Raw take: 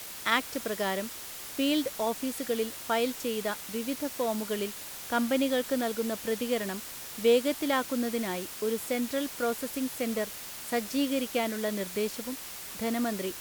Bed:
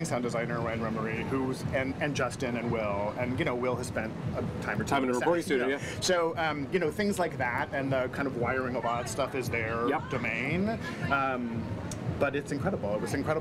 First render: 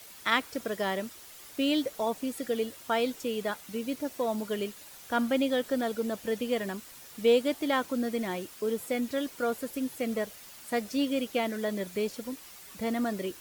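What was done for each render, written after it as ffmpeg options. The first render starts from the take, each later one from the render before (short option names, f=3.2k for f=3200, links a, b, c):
-af "afftdn=nr=9:nf=-42"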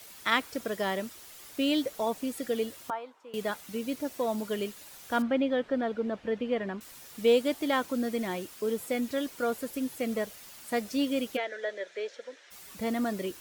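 -filter_complex "[0:a]asettb=1/sr,asplit=3[a][b][c];[a]atrim=end=2.904[d];[b]atrim=start=2.9:end=3.34,asetpts=PTS-STARTPTS,afade=t=in:d=0.004:c=qsin,afade=t=out:st=0.436:d=0.004:c=qsin,bandpass=f=1k:t=q:w=3.2[e];[c]atrim=start=3.336[f];[d][e]acrossfade=d=0.004:c1=hsin:c2=qsin[g];[g][f]acrossfade=d=0.004:c1=qsin:c2=hsin,asettb=1/sr,asplit=3[h][i][j];[h]atrim=end=5.224[k];[i]atrim=start=5.22:end=6.81,asetpts=PTS-STARTPTS,afade=t=in:d=0.004:c=qsin,afade=t=out:st=1.586:d=0.004:c=qsin,lowpass=2.5k[l];[j]atrim=start=6.806[m];[k][l]acrossfade=d=0.004:c1=hsin:c2=qsin[n];[n][m]acrossfade=d=0.004:c1=qsin:c2=hsin,asplit=3[o][p][q];[o]afade=t=out:st=11.36:d=0.02[r];[p]highpass=f=460:w=0.5412,highpass=f=460:w=1.3066,equalizer=f=540:t=q:w=4:g=4,equalizer=f=790:t=q:w=4:g=-7,equalizer=f=1.1k:t=q:w=4:g=-10,equalizer=f=1.7k:t=q:w=4:g=7,equalizer=f=2.7k:t=q:w=4:g=-5,equalizer=f=4.7k:t=q:w=4:g=-9,lowpass=f=5.3k:w=0.5412,lowpass=f=5.3k:w=1.3066,afade=t=in:st=11.36:d=0.02,afade=t=out:st=12.5:d=0.02[s];[q]afade=t=in:st=12.5:d=0.02[t];[r][s][t]amix=inputs=3:normalize=0"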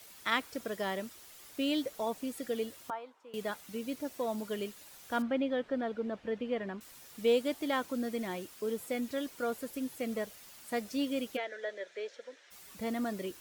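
-af "volume=-4.5dB"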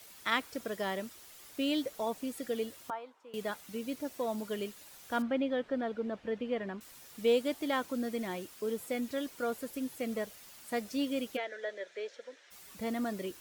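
-af anull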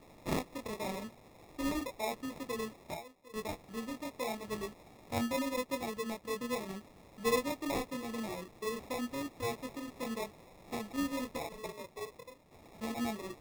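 -af "flanger=delay=18:depth=7.3:speed=0.86,acrusher=samples=29:mix=1:aa=0.000001"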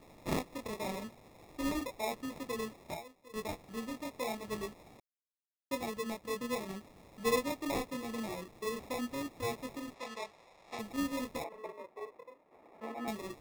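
-filter_complex "[0:a]asettb=1/sr,asplit=3[a][b][c];[a]atrim=end=9.944[d];[b]atrim=start=9.94:end=10.79,asetpts=PTS-STARTPTS,afade=t=in:d=0.004:c=qsin,afade=t=out:st=0.846:d=0.004:c=qsin,acrossover=split=510 7700:gain=0.2 1 0.178[e][f][g];[e][f][g]amix=inputs=3:normalize=0[h];[c]atrim=start=10.786[i];[d][h]acrossfade=d=0.004:c1=hsin:c2=qsin[j];[j][i]acrossfade=d=0.004:c1=qsin:c2=hsin,asettb=1/sr,asplit=3[k][l][m];[k]atrim=end=11.444[n];[l]atrim=start=11.44:end=13.08,asetpts=PTS-STARTPTS,afade=t=in:d=0.004:c=qsin,afade=t=out:st=1.636:d=0.004:c=qsin,acrossover=split=270 2200:gain=0.1 1 0.141[o][p][q];[o][p][q]amix=inputs=3:normalize=0[r];[m]atrim=start=13.076[s];[n][r]acrossfade=d=0.004:c1=hsin:c2=qsin[t];[t][s]acrossfade=d=0.004:c1=qsin:c2=hsin,asplit=3[u][v][w];[u]atrim=end=5,asetpts=PTS-STARTPTS,afade=t=out:st=4.996:d=0.004:c=hsin[x];[v]atrim=start=5:end=5.71,asetpts=PTS-STARTPTS,volume=0[y];[w]atrim=start=5.71,asetpts=PTS-STARTPTS,afade=t=in:d=0.004:c=hsin[z];[x][y][z]concat=n=3:v=0:a=1"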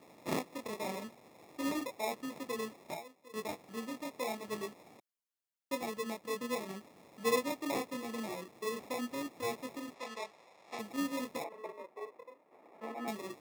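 -af "highpass=180,bandreject=f=3.8k:w=29"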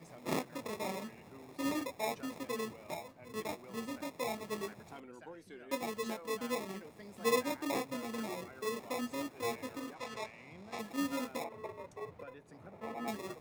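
-filter_complex "[1:a]volume=-24dB[a];[0:a][a]amix=inputs=2:normalize=0"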